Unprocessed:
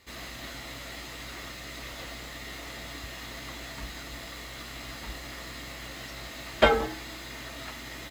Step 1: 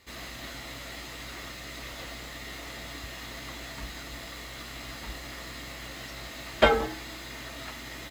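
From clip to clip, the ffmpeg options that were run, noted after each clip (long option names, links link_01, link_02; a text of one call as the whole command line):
ffmpeg -i in.wav -af anull out.wav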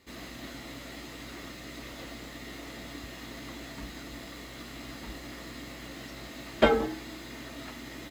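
ffmpeg -i in.wav -af "equalizer=frequency=270:width_type=o:width=1.6:gain=9,volume=-4.5dB" out.wav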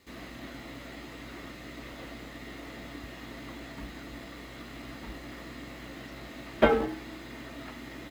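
ffmpeg -i in.wav -filter_complex "[0:a]acrusher=bits=3:mode=log:mix=0:aa=0.000001,acrossover=split=3300[link_01][link_02];[link_02]acompressor=threshold=-56dB:ratio=4:attack=1:release=60[link_03];[link_01][link_03]amix=inputs=2:normalize=0" out.wav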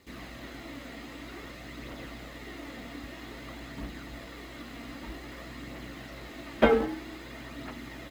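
ffmpeg -i in.wav -af "aphaser=in_gain=1:out_gain=1:delay=4.4:decay=0.3:speed=0.52:type=triangular" out.wav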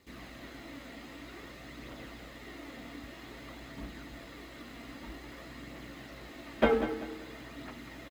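ffmpeg -i in.wav -af "aecho=1:1:194|388|582|776:0.266|0.0931|0.0326|0.0114,volume=-4dB" out.wav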